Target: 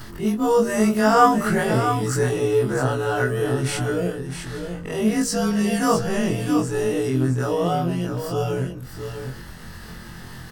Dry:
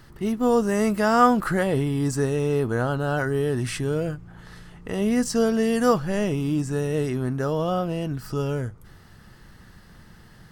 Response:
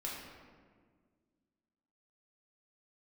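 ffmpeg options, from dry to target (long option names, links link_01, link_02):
-filter_complex "[0:a]afftfilt=real='re':imag='-im':win_size=2048:overlap=0.75,highshelf=frequency=4800:gain=3.5,acompressor=mode=upward:threshold=-34dB:ratio=2.5,bandreject=frequency=46.96:width_type=h:width=4,bandreject=frequency=93.92:width_type=h:width=4,bandreject=frequency=140.88:width_type=h:width=4,bandreject=frequency=187.84:width_type=h:width=4,bandreject=frequency=234.8:width_type=h:width=4,bandreject=frequency=281.76:width_type=h:width=4,bandreject=frequency=328.72:width_type=h:width=4,bandreject=frequency=375.68:width_type=h:width=4,bandreject=frequency=422.64:width_type=h:width=4,bandreject=frequency=469.6:width_type=h:width=4,bandreject=frequency=516.56:width_type=h:width=4,bandreject=frequency=563.52:width_type=h:width=4,bandreject=frequency=610.48:width_type=h:width=4,asplit=2[link_01][link_02];[link_02]aecho=0:1:659:0.398[link_03];[link_01][link_03]amix=inputs=2:normalize=0,volume=6.5dB"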